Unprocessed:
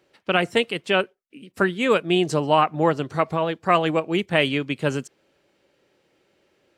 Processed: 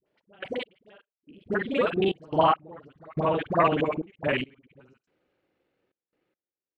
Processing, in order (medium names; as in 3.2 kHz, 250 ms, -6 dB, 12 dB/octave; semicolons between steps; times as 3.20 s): time reversed locally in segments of 41 ms; Doppler pass-by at 2.93 s, 24 m/s, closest 22 m; Bessel low-pass 2.6 kHz, order 2; phase dispersion highs, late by 62 ms, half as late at 680 Hz; trance gate "x.x...xxx" 71 bpm -24 dB